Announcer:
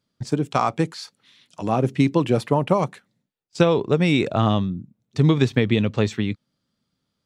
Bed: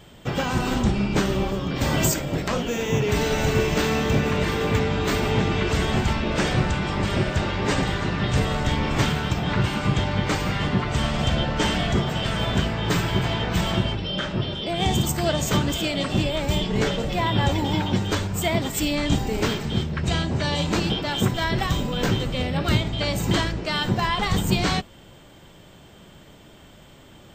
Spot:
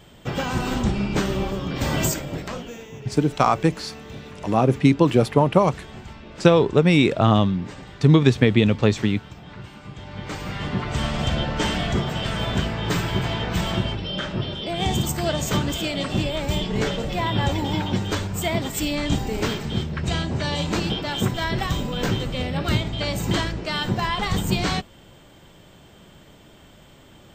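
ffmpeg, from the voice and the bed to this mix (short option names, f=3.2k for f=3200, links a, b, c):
-filter_complex "[0:a]adelay=2850,volume=2.5dB[a];[1:a]volume=15dB,afade=t=out:st=2:d=0.91:silence=0.158489,afade=t=in:st=9.97:d=1.07:silence=0.158489[b];[a][b]amix=inputs=2:normalize=0"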